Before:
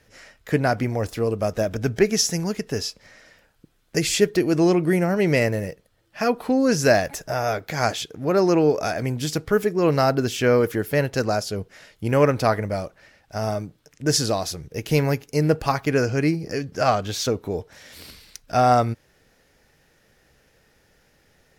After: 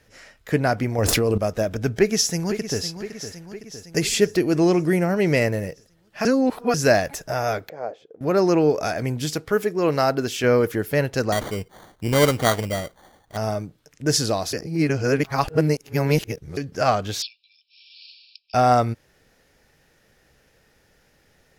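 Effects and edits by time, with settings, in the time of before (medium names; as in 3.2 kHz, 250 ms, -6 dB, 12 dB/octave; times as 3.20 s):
0.98–1.38 s: level flattener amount 100%
1.95–2.83 s: echo throw 510 ms, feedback 60%, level -11 dB
6.25–6.74 s: reverse
7.69–8.21 s: band-pass filter 510 Hz, Q 3.4
9.35–10.44 s: bass shelf 160 Hz -8.5 dB
11.32–13.37 s: sample-rate reducer 2.6 kHz
14.53–16.57 s: reverse
17.22–18.54 s: brick-wall FIR band-pass 2.3–5.5 kHz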